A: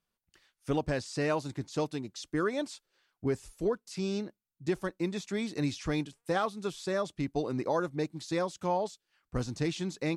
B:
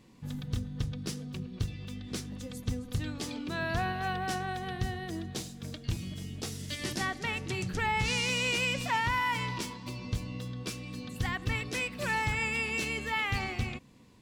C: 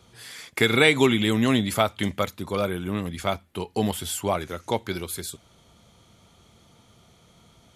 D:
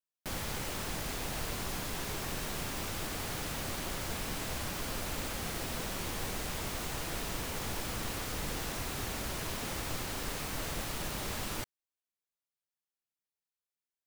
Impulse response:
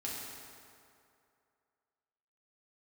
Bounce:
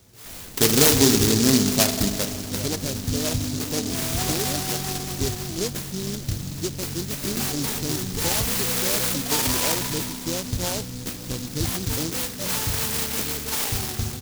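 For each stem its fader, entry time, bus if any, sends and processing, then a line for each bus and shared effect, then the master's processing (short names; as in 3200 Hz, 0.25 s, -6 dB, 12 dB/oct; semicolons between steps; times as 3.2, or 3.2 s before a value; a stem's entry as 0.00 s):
+1.5 dB, 1.95 s, no send, dry
+2.5 dB, 0.40 s, send -6.5 dB, high shelf 5200 Hz +4.5 dB
2.09 s -1.5 dB -> 2.51 s -12 dB, 0.00 s, send -4 dB, dry
-5.5 dB, 0.00 s, no send, dry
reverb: on, RT60 2.5 s, pre-delay 4 ms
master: noise-modulated delay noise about 5200 Hz, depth 0.26 ms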